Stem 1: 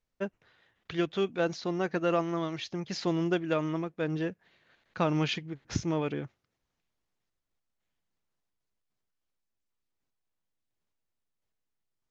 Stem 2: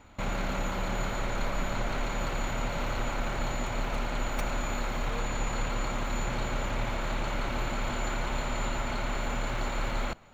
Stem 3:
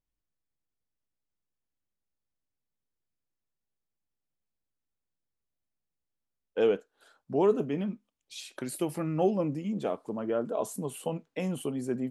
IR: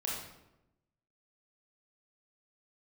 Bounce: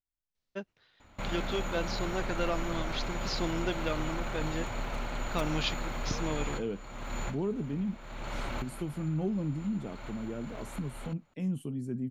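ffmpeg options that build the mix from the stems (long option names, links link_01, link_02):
-filter_complex "[0:a]equalizer=frequency=4200:width_type=o:width=1.2:gain=9,adelay=350,volume=-5.5dB[link_01];[1:a]adelay=1000,volume=-4dB[link_02];[2:a]asubboost=boost=8:cutoff=200,volume=-11dB,asplit=2[link_03][link_04];[link_04]apad=whole_len=499974[link_05];[link_02][link_05]sidechaincompress=threshold=-45dB:ratio=12:attack=16:release=424[link_06];[link_01][link_06][link_03]amix=inputs=3:normalize=0"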